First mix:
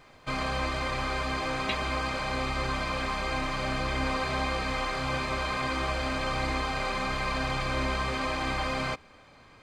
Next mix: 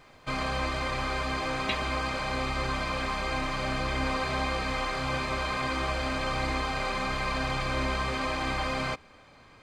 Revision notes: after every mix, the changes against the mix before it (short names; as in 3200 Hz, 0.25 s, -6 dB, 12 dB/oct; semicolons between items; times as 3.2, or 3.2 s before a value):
reverb: on, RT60 0.50 s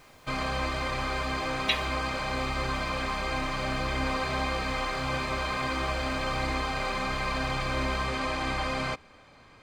speech: add tilt +4 dB/oct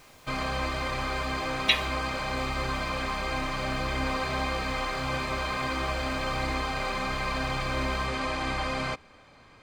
speech +4.5 dB